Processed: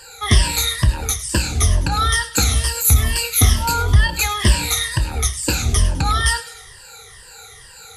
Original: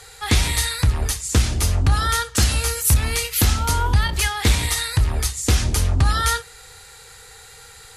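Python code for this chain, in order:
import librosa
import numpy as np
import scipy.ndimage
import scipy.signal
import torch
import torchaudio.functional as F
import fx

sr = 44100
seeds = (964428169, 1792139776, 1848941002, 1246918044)

p1 = fx.spec_ripple(x, sr, per_octave=1.3, drift_hz=-2.2, depth_db=19)
p2 = p1 + fx.echo_wet_highpass(p1, sr, ms=103, feedback_pct=51, hz=1800.0, wet_db=-15.0, dry=0)
y = p2 * librosa.db_to_amplitude(-1.5)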